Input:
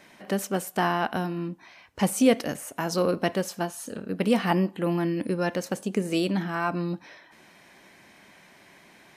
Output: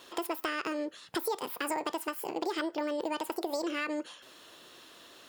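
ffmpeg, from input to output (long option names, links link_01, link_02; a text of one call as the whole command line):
ffmpeg -i in.wav -af "acompressor=threshold=-30dB:ratio=6,asetrate=76440,aresample=44100" out.wav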